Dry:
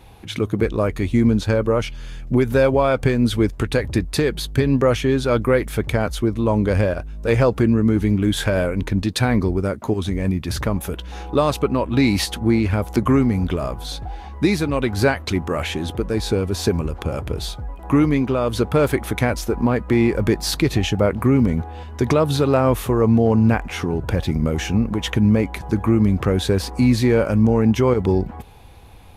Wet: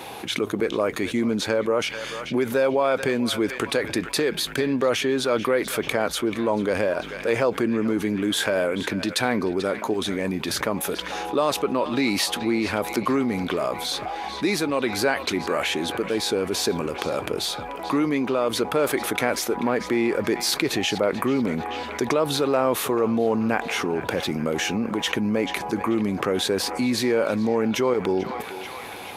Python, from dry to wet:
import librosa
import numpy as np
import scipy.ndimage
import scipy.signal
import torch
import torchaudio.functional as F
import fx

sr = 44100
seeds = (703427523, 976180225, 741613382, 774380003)

y = scipy.signal.sosfilt(scipy.signal.butter(2, 310.0, 'highpass', fs=sr, output='sos'), x)
y = fx.echo_banded(y, sr, ms=437, feedback_pct=62, hz=2400.0, wet_db=-14.0)
y = fx.env_flatten(y, sr, amount_pct=50)
y = F.gain(torch.from_numpy(y), -4.5).numpy()